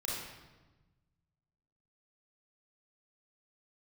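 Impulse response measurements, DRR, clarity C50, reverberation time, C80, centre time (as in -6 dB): -6.0 dB, -1.0 dB, 1.2 s, 2.0 dB, 82 ms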